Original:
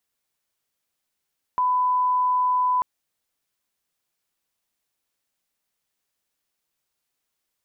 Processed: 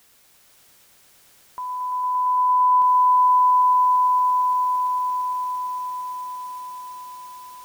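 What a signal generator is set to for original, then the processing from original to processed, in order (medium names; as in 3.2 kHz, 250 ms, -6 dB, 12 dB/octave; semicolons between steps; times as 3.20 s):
line-up tone -18 dBFS 1.24 s
reverse; upward compressor, threshold -36 dBFS; reverse; peak limiter -26.5 dBFS; echo with a slow build-up 114 ms, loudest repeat 8, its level -6 dB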